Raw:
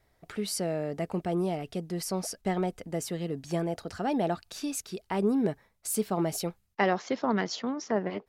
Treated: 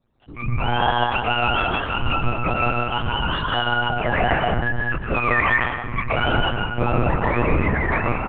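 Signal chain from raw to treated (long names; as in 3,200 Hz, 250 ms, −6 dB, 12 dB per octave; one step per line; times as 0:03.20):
frequency axis turned over on the octave scale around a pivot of 700 Hz
dynamic equaliser 260 Hz, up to +4 dB, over −48 dBFS, Q 0.93
in parallel at +0.5 dB: brickwall limiter −23.5 dBFS, peak gain reduction 9 dB
on the sum: automatic gain control gain up to 11 dB
soft clipping −7 dBFS, distortion −20 dB
on a send: repeating echo 484 ms, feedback 55%, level −20 dB
on the sum: dense smooth reverb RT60 1.2 s, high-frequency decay 0.55×, pre-delay 110 ms, DRR −1.5 dB
one-pitch LPC vocoder at 8 kHz 120 Hz
level −6 dB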